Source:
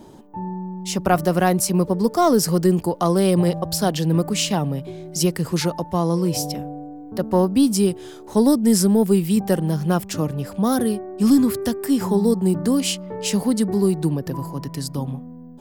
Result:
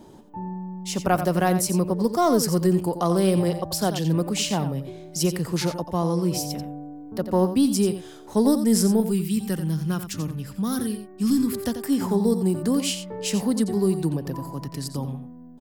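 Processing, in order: 9–11.53 bell 630 Hz -13 dB 1.4 oct; echo 88 ms -10 dB; gain -3.5 dB

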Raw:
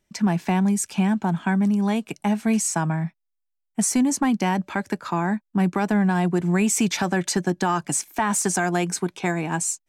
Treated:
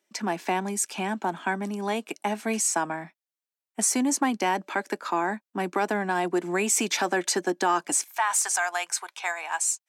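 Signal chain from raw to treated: HPF 290 Hz 24 dB/oct, from 8.04 s 760 Hz

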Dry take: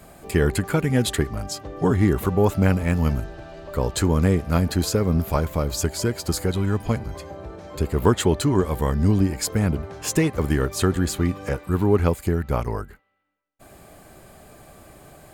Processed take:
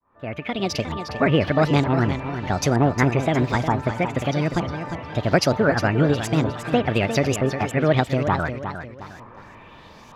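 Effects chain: opening faded in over 1.64 s; LFO low-pass saw up 0.72 Hz 730–4400 Hz; wide varispeed 1.51×; warbling echo 0.356 s, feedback 37%, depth 109 cents, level -9 dB

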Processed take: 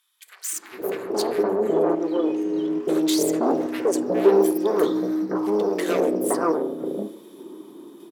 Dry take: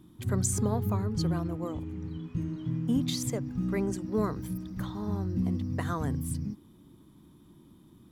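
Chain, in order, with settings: in parallel at -7 dB: sine folder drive 13 dB, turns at -16.5 dBFS; on the sum: ladder high-pass 350 Hz, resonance 60%; dynamic EQ 2800 Hz, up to -4 dB, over -53 dBFS, Q 0.84; AGC gain up to 7.5 dB; on a send at -8 dB: reverb RT60 0.85 s, pre-delay 3 ms; on the sum: random-step tremolo; bands offset in time highs, lows 0.52 s, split 1500 Hz; gain +7.5 dB

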